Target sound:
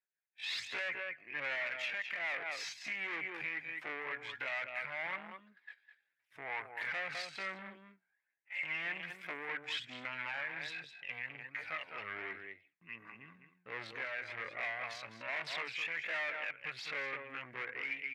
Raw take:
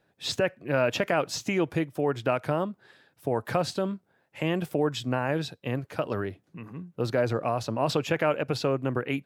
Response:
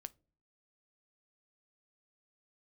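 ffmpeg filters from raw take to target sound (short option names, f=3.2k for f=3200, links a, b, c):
-filter_complex "[0:a]atempo=0.51,aphaser=in_gain=1:out_gain=1:delay=1.3:decay=0.48:speed=1.3:type=sinusoidal,agate=range=-18dB:threshold=-51dB:ratio=16:detection=peak,asplit=2[a][b];[b]aecho=0:1:206:0.299[c];[a][c]amix=inputs=2:normalize=0,aeval=exprs='(tanh(25.1*val(0)+0.3)-tanh(0.3))/25.1':c=same,bandpass=f=2.1k:t=q:w=5.4:csg=0,alimiter=level_in=15.5dB:limit=-24dB:level=0:latency=1:release=204,volume=-15.5dB,dynaudnorm=f=110:g=5:m=11.5dB"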